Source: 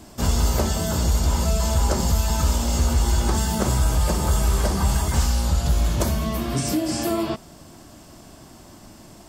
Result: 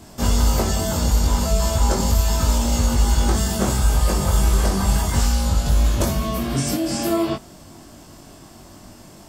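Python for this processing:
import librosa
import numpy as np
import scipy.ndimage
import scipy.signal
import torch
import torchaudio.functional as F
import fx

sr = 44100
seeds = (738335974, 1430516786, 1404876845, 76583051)

y = fx.doubler(x, sr, ms=21.0, db=-2.5)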